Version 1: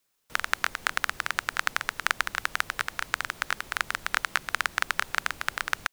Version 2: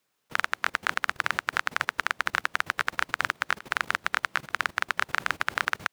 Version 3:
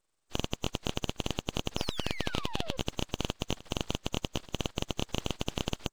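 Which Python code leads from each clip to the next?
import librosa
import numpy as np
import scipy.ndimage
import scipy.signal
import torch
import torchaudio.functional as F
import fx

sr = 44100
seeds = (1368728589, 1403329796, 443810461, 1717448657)

y1 = scipy.signal.sosfilt(scipy.signal.butter(2, 92.0, 'highpass', fs=sr, output='sos'), x)
y1 = fx.high_shelf(y1, sr, hz=4300.0, db=-9.5)
y1 = fx.level_steps(y1, sr, step_db=17)
y1 = F.gain(torch.from_numpy(y1), 8.0).numpy()
y2 = fx.freq_compress(y1, sr, knee_hz=2900.0, ratio=4.0)
y2 = fx.spec_paint(y2, sr, seeds[0], shape='fall', start_s=1.77, length_s=1.0, low_hz=250.0, high_hz=2700.0, level_db=-32.0)
y2 = np.abs(y2)
y2 = F.gain(torch.from_numpy(y2), -5.0).numpy()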